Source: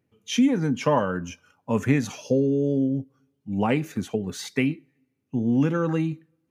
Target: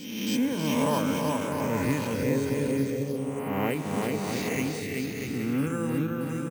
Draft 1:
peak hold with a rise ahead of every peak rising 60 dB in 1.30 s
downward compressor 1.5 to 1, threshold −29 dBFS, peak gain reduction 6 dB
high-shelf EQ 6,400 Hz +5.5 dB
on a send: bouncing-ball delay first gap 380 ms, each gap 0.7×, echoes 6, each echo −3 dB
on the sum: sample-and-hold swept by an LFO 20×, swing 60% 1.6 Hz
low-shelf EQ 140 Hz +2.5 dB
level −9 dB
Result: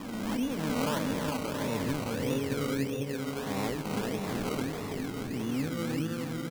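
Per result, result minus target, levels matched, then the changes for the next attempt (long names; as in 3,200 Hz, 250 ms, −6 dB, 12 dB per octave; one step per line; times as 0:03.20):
sample-and-hold swept by an LFO: distortion +11 dB; downward compressor: peak gain reduction +6 dB
change: sample-and-hold swept by an LFO 4×, swing 60% 1.6 Hz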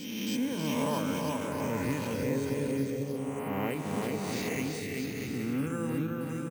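downward compressor: peak gain reduction +6 dB
remove: downward compressor 1.5 to 1, threshold −29 dBFS, peak gain reduction 6 dB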